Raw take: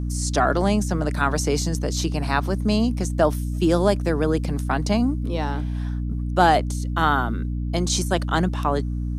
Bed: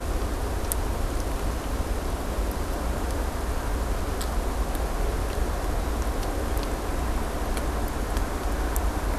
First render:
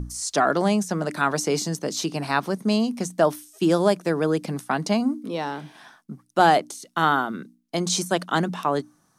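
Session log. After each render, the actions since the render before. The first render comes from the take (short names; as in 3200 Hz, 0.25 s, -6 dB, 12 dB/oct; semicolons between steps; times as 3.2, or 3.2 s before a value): notches 60/120/180/240/300 Hz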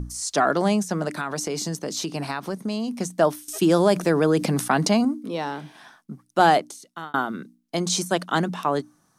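1.08–2.95 compressor, threshold -23 dBFS; 3.48–5.05 fast leveller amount 50%; 6.56–7.14 fade out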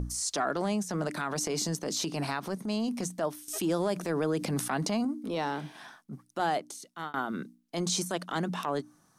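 compressor 4:1, threshold -26 dBFS, peak gain reduction 12.5 dB; transient shaper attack -8 dB, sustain -1 dB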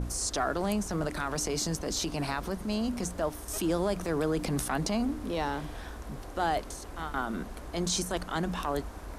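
add bed -15 dB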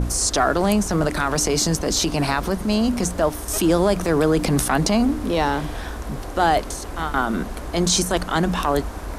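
gain +11 dB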